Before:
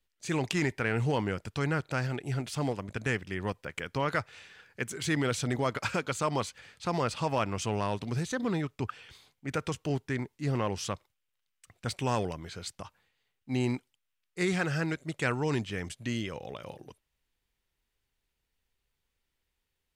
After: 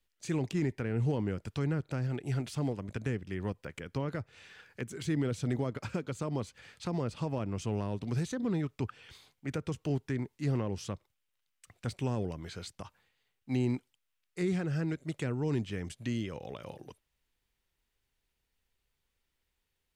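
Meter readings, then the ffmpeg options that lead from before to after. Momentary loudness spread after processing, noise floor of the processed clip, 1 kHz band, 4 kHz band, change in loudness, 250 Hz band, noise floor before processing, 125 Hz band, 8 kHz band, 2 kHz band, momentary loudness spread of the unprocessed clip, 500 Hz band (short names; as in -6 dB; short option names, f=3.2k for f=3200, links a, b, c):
12 LU, -82 dBFS, -10.5 dB, -8.0 dB, -2.5 dB, -0.5 dB, -82 dBFS, 0.0 dB, -8.0 dB, -10.5 dB, 12 LU, -4.0 dB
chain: -filter_complex "[0:a]acrossover=split=460[a][b];[b]acompressor=threshold=-43dB:ratio=6[c];[a][c]amix=inputs=2:normalize=0"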